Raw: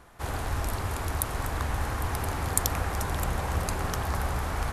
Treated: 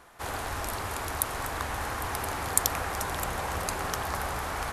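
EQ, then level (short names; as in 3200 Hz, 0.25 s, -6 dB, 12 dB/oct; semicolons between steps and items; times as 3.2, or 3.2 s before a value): low shelf 250 Hz -11.5 dB; +2.0 dB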